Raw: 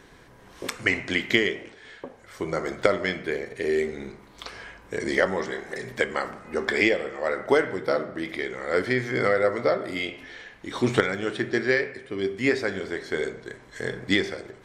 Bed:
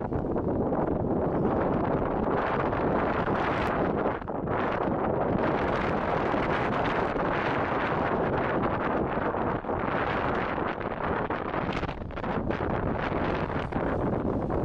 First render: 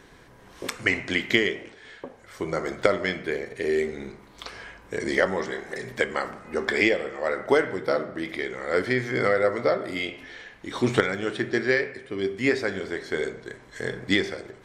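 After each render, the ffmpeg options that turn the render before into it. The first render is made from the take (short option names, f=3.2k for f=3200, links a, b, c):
-af anull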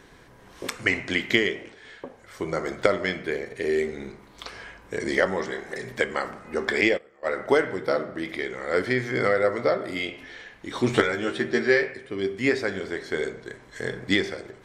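-filter_complex "[0:a]asettb=1/sr,asplit=3[a][b][c];[a]atrim=end=6.814[d];[b]atrim=start=6.81:end=7.33,asetpts=PTS-STARTPTS,afade=t=in:d=0.004:c=qsin,afade=t=out:st=0.516:d=0.004:c=qsin,agate=range=-21dB:threshold=-27dB:ratio=16:release=100:detection=peak[e];[c]atrim=start=7.326[f];[d][e]acrossfade=d=0.004:c1=hsin:c2=qsin[g];[g][f]acrossfade=d=0.004:c1=qsin:c2=hsin,asettb=1/sr,asplit=3[h][i][j];[h]atrim=end=10.924[k];[i]atrim=start=10.92:end=11.94,asetpts=PTS-STARTPTS,afade=t=in:d=0.004:c=qsin,afade=t=out:st=1.016:d=0.004:c=qsin,asplit=2[l][m];[m]adelay=13,volume=-4dB[n];[l][n]amix=inputs=2:normalize=0,atrim=end_sample=44982[o];[j]atrim=start=11.936[p];[k][o]acrossfade=d=0.004:c1=hsin:c2=qsin[q];[q][p]acrossfade=d=0.004:c1=qsin:c2=hsin"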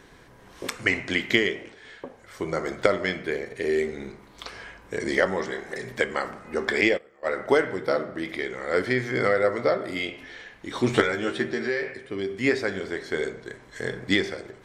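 -filter_complex "[0:a]asettb=1/sr,asplit=3[a][b][c];[a]atrim=end=11.464[d];[b]atrim=start=11.46:end=12.3,asetpts=PTS-STARTPTS,afade=t=in:d=0.004:c=qsin,afade=t=out:st=0.836:d=0.004:c=qsin,acompressor=threshold=-25dB:ratio=2.5:attack=3.2:release=140:knee=1:detection=peak[e];[c]atrim=start=12.296[f];[d][e]acrossfade=d=0.004:c1=hsin:c2=qsin[g];[g][f]acrossfade=d=0.004:c1=qsin:c2=hsin"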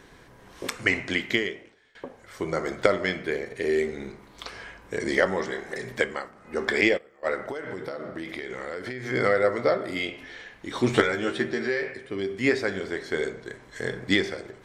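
-filter_complex "[0:a]asettb=1/sr,asplit=3[a][b][c];[a]atrim=end=7.354[d];[b]atrim=start=7.35:end=9.06,asetpts=PTS-STARTPTS,afade=t=in:d=0.004:c=qsin,afade=t=out:st=1.706:d=0.004:c=qsin,acompressor=threshold=-29dB:ratio=16:attack=3.2:release=140:knee=1:detection=peak[e];[c]atrim=start=9.056[f];[d][e]acrossfade=d=0.004:c1=hsin:c2=qsin[g];[g][f]acrossfade=d=0.004:c1=qsin:c2=hsin,asplit=4[h][i][j][k];[h]atrim=end=1.95,asetpts=PTS-STARTPTS,afade=t=out:st=1.02:d=0.93:silence=0.0707946[l];[i]atrim=start=1.95:end=6.3,asetpts=PTS-STARTPTS,afade=t=in:d=0.004:c=hsin:silence=0.0707946,afade=t=out:st=4.06:d=0.29:silence=0.237137[m];[j]atrim=start=6.3:end=6.34,asetpts=PTS-STARTPTS,volume=-12.5dB[n];[k]atrim=start=6.34,asetpts=PTS-STARTPTS,afade=t=in:d=0.29:silence=0.237137[o];[l][m][n][o]concat=n=4:v=0:a=1"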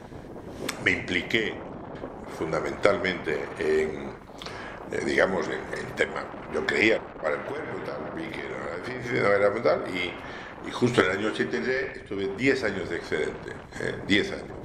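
-filter_complex "[1:a]volume=-12.5dB[a];[0:a][a]amix=inputs=2:normalize=0"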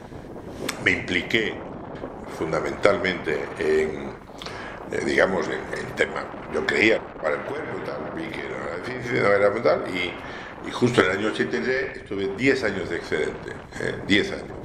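-af "volume=3dB"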